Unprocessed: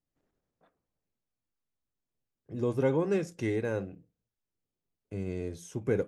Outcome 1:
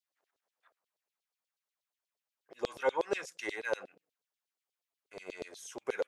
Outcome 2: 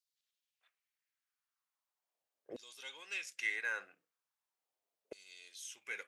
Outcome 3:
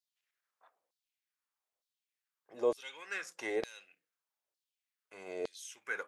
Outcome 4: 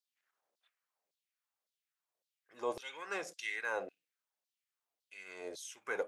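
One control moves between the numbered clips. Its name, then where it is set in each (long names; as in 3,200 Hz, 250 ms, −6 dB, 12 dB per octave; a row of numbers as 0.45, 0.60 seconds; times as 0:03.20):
auto-filter high-pass, speed: 8.3, 0.39, 1.1, 1.8 Hertz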